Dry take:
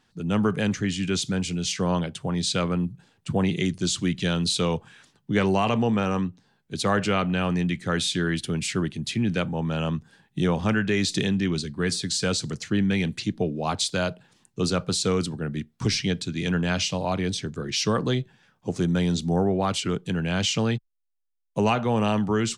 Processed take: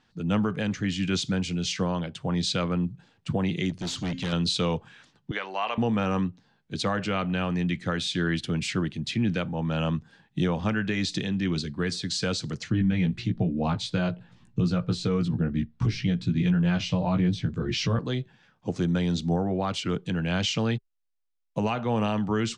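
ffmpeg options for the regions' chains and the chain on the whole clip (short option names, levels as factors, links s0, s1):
-filter_complex "[0:a]asettb=1/sr,asplit=3[s0][s1][s2];[s0]atrim=end=3.704[s3];[s1]atrim=start=3.7:end=4.33,asetpts=PTS-STARTPTS,afade=t=in:d=0.004:c=qsin,afade=t=out:st=0.626:d=0.004:c=qsin,bandreject=f=264.5:t=h:w=4,bandreject=f=529:t=h:w=4,bandreject=f=793.5:t=h:w=4,bandreject=f=1058:t=h:w=4,bandreject=f=1322.5:t=h:w=4,bandreject=f=1587:t=h:w=4,bandreject=f=1851.5:t=h:w=4,bandreject=f=2116:t=h:w=4,bandreject=f=2380.5:t=h:w=4,bandreject=f=2645:t=h:w=4,bandreject=f=2909.5:t=h:w=4,bandreject=f=3174:t=h:w=4,bandreject=f=3438.5:t=h:w=4,bandreject=f=3703:t=h:w=4,bandreject=f=3967.5:t=h:w=4,bandreject=f=4232:t=h:w=4,bandreject=f=4496.5:t=h:w=4,bandreject=f=4761:t=h:w=4,bandreject=f=5025.5:t=h:w=4,bandreject=f=5290:t=h:w=4,bandreject=f=5554.5:t=h:w=4,bandreject=f=5819:t=h:w=4,bandreject=f=6083.5:t=h:w=4,bandreject=f=6348:t=h:w=4,bandreject=f=6612.5:t=h:w=4,bandreject=f=6877:t=h:w=4,asoftclip=type=hard:threshold=0.0473[s4];[s2]atrim=start=4.326[s5];[s3][s4]acrossfade=d=0.004:c1=hsin:c2=qsin[s6];[s6][s5]acrossfade=d=0.004:c1=qsin:c2=hsin,asettb=1/sr,asplit=3[s7][s8][s9];[s7]atrim=end=5.314[s10];[s8]atrim=start=5.31:end=5.78,asetpts=PTS-STARTPTS,afade=t=in:d=0.004:c=qsin,afade=t=out:st=0.466:d=0.004:c=qsin,highpass=730,lowpass=4300,acompressor=mode=upward:threshold=0.0316:ratio=2.5:attack=3.2:release=140:knee=2.83:detection=peak[s11];[s9]atrim=start=5.776[s12];[s10][s11]acrossfade=d=0.004:c1=hsin:c2=qsin[s13];[s13][s12]acrossfade=d=0.004:c1=qsin:c2=hsin,asettb=1/sr,asplit=3[s14][s15][s16];[s14]atrim=end=12.714[s17];[s15]atrim=start=12.71:end=17.99,asetpts=PTS-STARTPTS,afade=t=in:d=0.004:c=qsin,afade=t=out:st=5.276:d=0.004:c=qsin,bass=f=250:g=10,treble=f=4000:g=-7,aphaser=in_gain=1:out_gain=1:delay=3:decay=0.23:speed=1.1:type=triangular,asplit=2[s18][s19];[s19]adelay=17,volume=0.708[s20];[s18][s20]amix=inputs=2:normalize=0,atrim=end_sample=232848[s21];[s16]atrim=start=17.986[s22];[s17][s21]acrossfade=d=0.004:c1=hsin:c2=qsin[s23];[s23][s22]acrossfade=d=0.004:c1=qsin:c2=hsin,lowpass=5600,bandreject=f=400:w=12,alimiter=limit=0.15:level=0:latency=1:release=397"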